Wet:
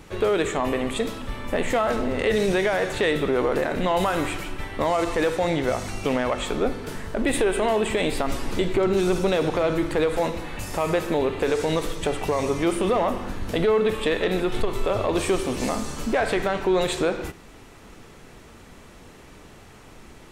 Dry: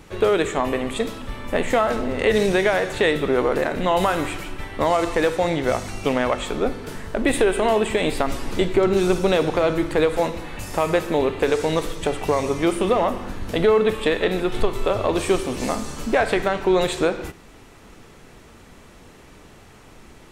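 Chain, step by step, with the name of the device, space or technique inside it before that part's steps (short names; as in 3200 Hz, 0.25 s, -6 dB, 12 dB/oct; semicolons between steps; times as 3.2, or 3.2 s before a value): soft clipper into limiter (soft clip -8.5 dBFS, distortion -24 dB; limiter -14 dBFS, peak gain reduction 4 dB)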